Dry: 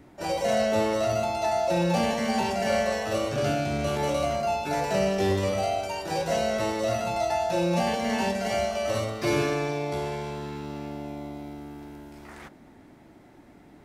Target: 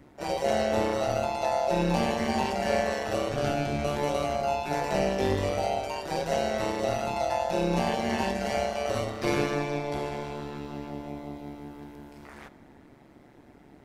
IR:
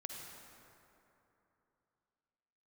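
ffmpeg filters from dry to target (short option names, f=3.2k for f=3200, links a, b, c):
-filter_complex "[0:a]tremolo=f=140:d=0.788,asplit=2[a][b];[b]lowpass=5.9k[c];[1:a]atrim=start_sample=2205,asetrate=48510,aresample=44100[d];[c][d]afir=irnorm=-1:irlink=0,volume=-7.5dB[e];[a][e]amix=inputs=2:normalize=0"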